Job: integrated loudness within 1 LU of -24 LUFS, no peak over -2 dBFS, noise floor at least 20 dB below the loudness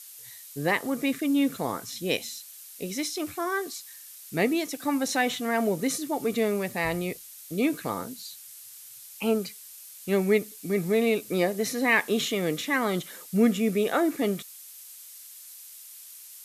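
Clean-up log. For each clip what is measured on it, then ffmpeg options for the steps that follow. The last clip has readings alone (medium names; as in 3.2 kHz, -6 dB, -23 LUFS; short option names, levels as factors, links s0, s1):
noise floor -46 dBFS; noise floor target -48 dBFS; loudness -27.5 LUFS; peak level -10.5 dBFS; loudness target -24.0 LUFS
-> -af "afftdn=nr=6:nf=-46"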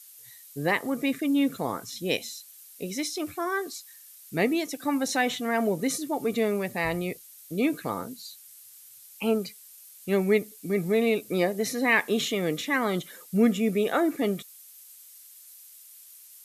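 noise floor -50 dBFS; loudness -27.5 LUFS; peak level -10.5 dBFS; loudness target -24.0 LUFS
-> -af "volume=1.5"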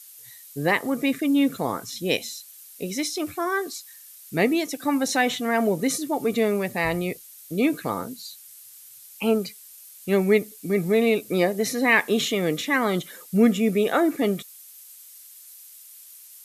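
loudness -23.5 LUFS; peak level -7.0 dBFS; noise floor -47 dBFS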